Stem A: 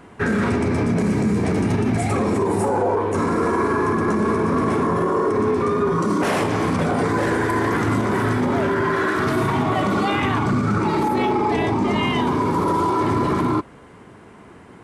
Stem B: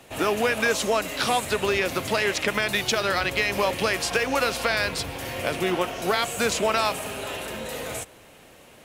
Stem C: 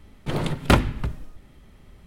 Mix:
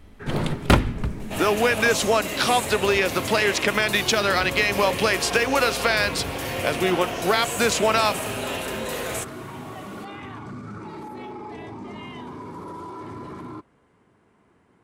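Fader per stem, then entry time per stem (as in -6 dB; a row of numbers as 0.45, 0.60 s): -17.0, +3.0, +0.5 dB; 0.00, 1.20, 0.00 s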